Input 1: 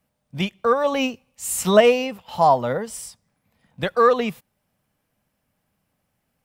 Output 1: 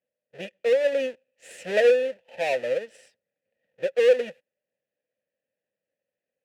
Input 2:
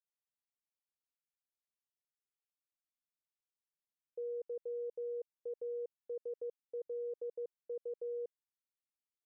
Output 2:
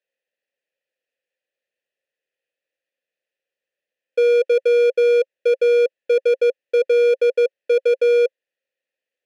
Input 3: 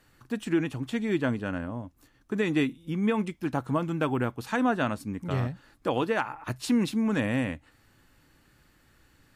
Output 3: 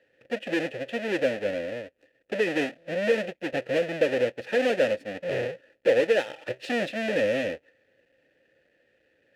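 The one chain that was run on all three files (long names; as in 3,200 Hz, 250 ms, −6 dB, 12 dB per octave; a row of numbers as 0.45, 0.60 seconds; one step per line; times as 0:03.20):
each half-wave held at its own peak
dynamic equaliser 8,200 Hz, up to +4 dB, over −35 dBFS, Q 0.75
leveller curve on the samples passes 1
formant filter e
normalise the peak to −9 dBFS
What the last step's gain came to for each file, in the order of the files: −3.5, +28.5, +8.0 decibels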